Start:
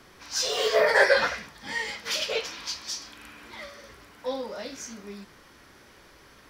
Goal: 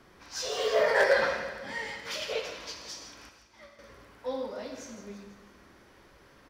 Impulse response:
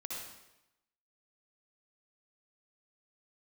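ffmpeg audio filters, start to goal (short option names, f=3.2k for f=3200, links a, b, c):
-filter_complex "[0:a]highshelf=f=2k:g=-7,asettb=1/sr,asplit=3[a][b][c];[a]atrim=end=3.294[d];[b]atrim=start=3.29:end=3.79,asetpts=PTS-STARTPTS,afade=t=in:d=0.004:c=qsin,afade=t=out:st=0.496:d=0.004:c=qsin,agate=range=-33dB:threshold=-36dB:ratio=3:detection=peak[e];[c]atrim=start=3.786[f];[d][e]acrossfade=d=0.004:c1=hsin:c2=qsin[g];[g][f]acrossfade=d=0.004:c1=qsin:c2=hsin,aecho=1:1:165|330|495|660|825|990:0.251|0.133|0.0706|0.0374|0.0198|0.0105,aeval=exprs='0.266*(abs(mod(val(0)/0.266+3,4)-2)-1)':c=same,asplit=2[h][i];[1:a]atrim=start_sample=2205,afade=t=out:st=0.22:d=0.01,atrim=end_sample=10143[j];[i][j]afir=irnorm=-1:irlink=0,volume=-1.5dB[k];[h][k]amix=inputs=2:normalize=0,volume=-6dB"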